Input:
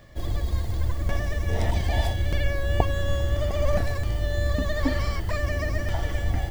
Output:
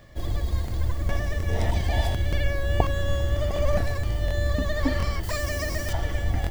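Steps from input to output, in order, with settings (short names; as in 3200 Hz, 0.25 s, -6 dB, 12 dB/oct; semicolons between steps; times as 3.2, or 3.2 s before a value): 5.23–5.93 tone controls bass -3 dB, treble +11 dB; crackling interface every 0.72 s, samples 1024, repeat, from 0.66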